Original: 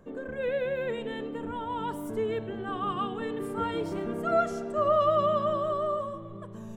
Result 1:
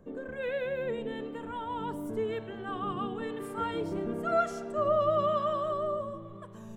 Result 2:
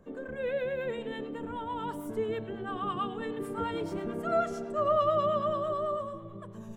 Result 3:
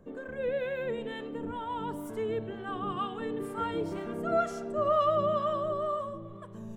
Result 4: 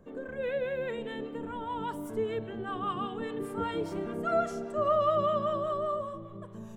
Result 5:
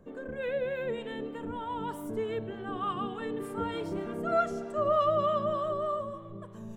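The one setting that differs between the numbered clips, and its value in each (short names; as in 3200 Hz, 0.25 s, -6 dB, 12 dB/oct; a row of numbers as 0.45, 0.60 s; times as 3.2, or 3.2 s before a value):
harmonic tremolo, rate: 1, 9.1, 2.1, 5, 3.3 Hz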